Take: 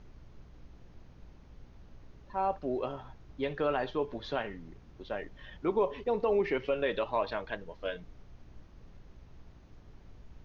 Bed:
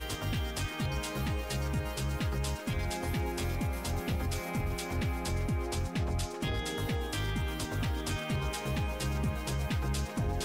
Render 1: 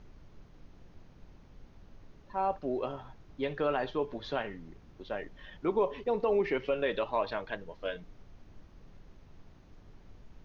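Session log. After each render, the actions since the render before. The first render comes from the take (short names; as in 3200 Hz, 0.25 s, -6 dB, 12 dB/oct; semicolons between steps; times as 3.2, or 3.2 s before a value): de-hum 60 Hz, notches 2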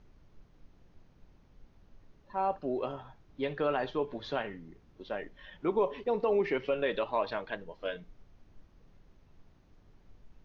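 noise print and reduce 6 dB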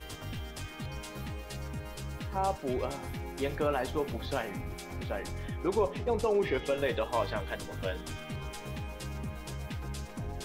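add bed -6.5 dB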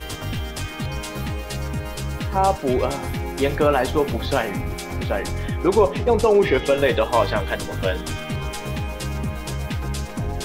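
gain +12 dB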